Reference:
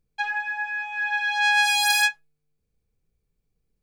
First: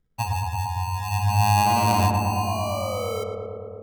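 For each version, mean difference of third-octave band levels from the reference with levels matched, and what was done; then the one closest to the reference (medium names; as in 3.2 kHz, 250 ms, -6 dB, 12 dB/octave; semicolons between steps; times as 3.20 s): 18.0 dB: treble shelf 3.4 kHz -11.5 dB; painted sound fall, 2.03–3.24 s, 420–940 Hz -33 dBFS; sample-and-hold 25×; on a send: filtered feedback delay 112 ms, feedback 85%, low-pass 1.6 kHz, level -3.5 dB; on the sum: trim +2.5 dB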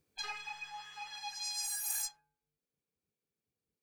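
11.0 dB: spectral gate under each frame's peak -15 dB weak; de-hum 120.7 Hz, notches 13; dynamic bell 3.4 kHz, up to -8 dB, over -59 dBFS, Q 7.7; gain riding within 10 dB 2 s; trim -4.5 dB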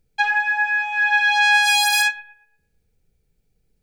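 1.5 dB: hum notches 50/100/150/200/250/300/350 Hz; peak limiter -15 dBFS, peak gain reduction 10.5 dB; Butterworth band-stop 1.1 kHz, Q 4.7; bucket-brigade echo 116 ms, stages 2048, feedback 32%, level -18.5 dB; trim +8 dB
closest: third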